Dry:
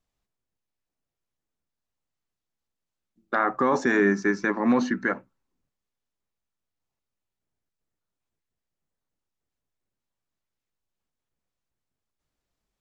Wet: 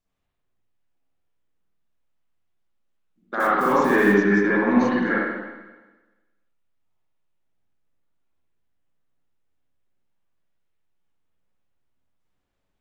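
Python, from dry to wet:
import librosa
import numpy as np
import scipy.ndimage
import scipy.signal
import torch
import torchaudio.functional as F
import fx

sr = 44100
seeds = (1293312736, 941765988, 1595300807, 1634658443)

p1 = fx.block_float(x, sr, bits=5, at=(3.4, 4.2))
p2 = 10.0 ** (-22.5 / 20.0) * np.tanh(p1 / 10.0 ** (-22.5 / 20.0))
p3 = p1 + F.gain(torch.from_numpy(p2), -10.0).numpy()
p4 = fx.rev_spring(p3, sr, rt60_s=1.2, pass_ms=(49, 60), chirp_ms=65, drr_db=-8.5)
y = F.gain(torch.from_numpy(p4), -6.0).numpy()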